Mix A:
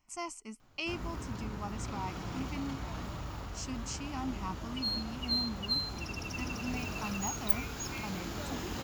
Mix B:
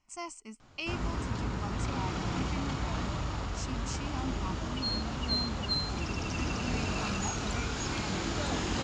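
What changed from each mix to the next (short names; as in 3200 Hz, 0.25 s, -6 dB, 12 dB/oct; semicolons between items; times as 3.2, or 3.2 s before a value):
first sound +7.5 dB; master: add elliptic low-pass 8400 Hz, stop band 70 dB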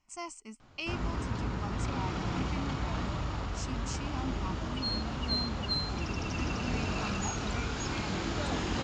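first sound: add air absorption 62 m; reverb: off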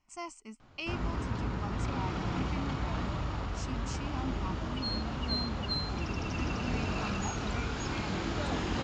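master: add high shelf 6300 Hz -7.5 dB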